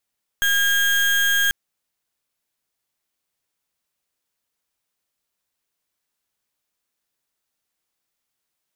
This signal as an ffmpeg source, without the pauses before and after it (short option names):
-f lavfi -i "aevalsrc='0.119*(2*lt(mod(1620*t,1),0.33)-1)':d=1.09:s=44100"